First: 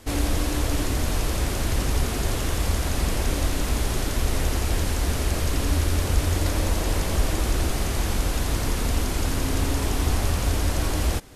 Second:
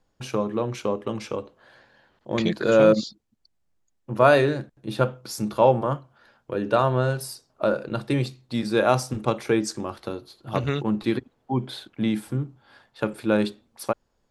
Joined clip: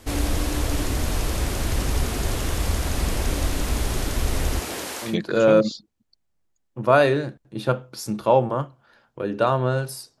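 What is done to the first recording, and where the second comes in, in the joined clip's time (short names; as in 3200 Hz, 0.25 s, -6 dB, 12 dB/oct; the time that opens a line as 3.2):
first
4.59–5.16 HPF 190 Hz -> 720 Hz
5.08 switch to second from 2.4 s, crossfade 0.16 s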